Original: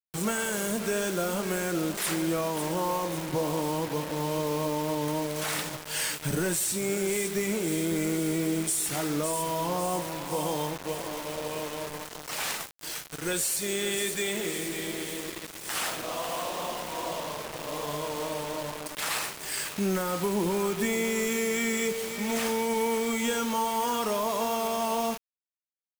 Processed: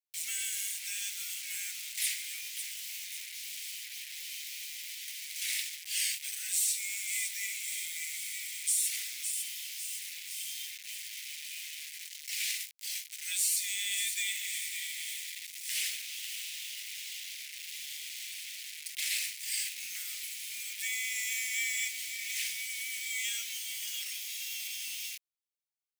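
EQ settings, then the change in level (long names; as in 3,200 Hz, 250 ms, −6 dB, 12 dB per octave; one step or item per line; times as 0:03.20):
elliptic high-pass filter 2,100 Hz, stop band 50 dB
0.0 dB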